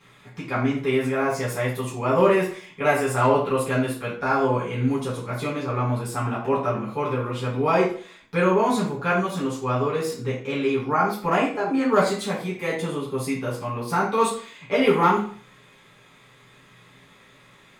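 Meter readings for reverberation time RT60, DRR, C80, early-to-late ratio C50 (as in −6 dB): 0.45 s, −9.0 dB, 10.5 dB, 5.5 dB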